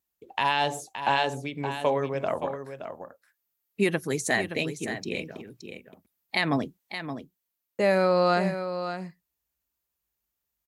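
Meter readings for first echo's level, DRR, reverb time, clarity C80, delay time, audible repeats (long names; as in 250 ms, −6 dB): −9.5 dB, no reverb audible, no reverb audible, no reverb audible, 571 ms, 1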